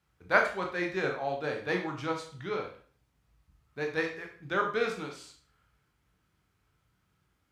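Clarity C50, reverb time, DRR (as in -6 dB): 7.5 dB, 0.45 s, 1.5 dB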